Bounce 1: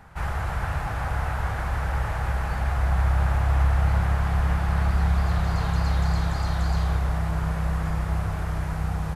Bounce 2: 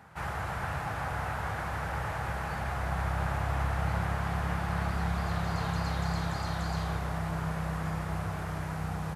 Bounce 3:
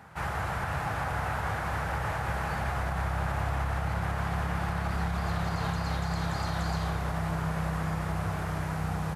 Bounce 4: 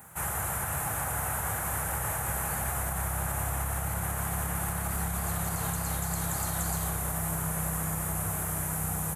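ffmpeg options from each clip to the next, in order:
-af "highpass=110,volume=-3dB"
-af "alimiter=limit=-24dB:level=0:latency=1:release=69,volume=3dB"
-af "aexciter=amount=9.5:drive=8.6:freq=7.2k,volume=-2.5dB"

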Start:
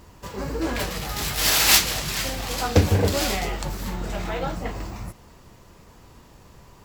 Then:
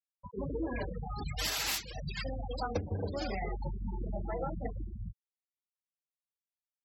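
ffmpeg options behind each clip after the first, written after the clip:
-af "bandreject=f=60:t=h:w=6,bandreject=f=120:t=h:w=6,bandreject=f=180:t=h:w=6,afftfilt=real='re*gte(hypot(re,im),0.0891)':imag='im*gte(hypot(re,im),0.0891)':win_size=1024:overlap=0.75,acompressor=threshold=-26dB:ratio=16,volume=-4.5dB"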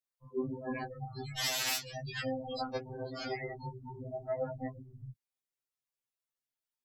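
-af "afftfilt=real='re*2.45*eq(mod(b,6),0)':imag='im*2.45*eq(mod(b,6),0)':win_size=2048:overlap=0.75,volume=3dB"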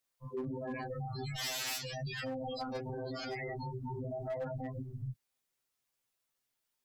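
-af "volume=30dB,asoftclip=hard,volume=-30dB,alimiter=level_in=17.5dB:limit=-24dB:level=0:latency=1:release=51,volume=-17.5dB,volume=8.5dB"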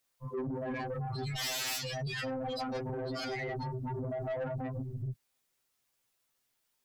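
-af "asoftclip=type=tanh:threshold=-36.5dB,volume=5.5dB"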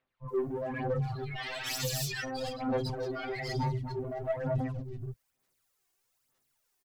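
-filter_complex "[0:a]aeval=exprs='0.0266*(cos(1*acos(clip(val(0)/0.0266,-1,1)))-cos(1*PI/2))+0.000422*(cos(8*acos(clip(val(0)/0.0266,-1,1)))-cos(8*PI/2))':c=same,acrossover=split=3200[a][b];[b]adelay=280[c];[a][c]amix=inputs=2:normalize=0,aphaser=in_gain=1:out_gain=1:delay=2.8:decay=0.57:speed=1.1:type=sinusoidal"

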